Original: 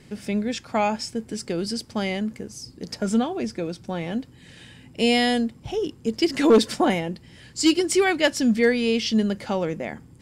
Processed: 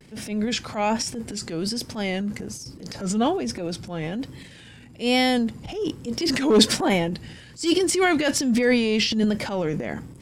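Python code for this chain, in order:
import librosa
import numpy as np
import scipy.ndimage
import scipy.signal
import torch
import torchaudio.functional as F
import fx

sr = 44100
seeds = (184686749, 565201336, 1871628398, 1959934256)

y = fx.transient(x, sr, attack_db=-9, sustain_db=9)
y = fx.vibrato(y, sr, rate_hz=1.2, depth_cents=91.0)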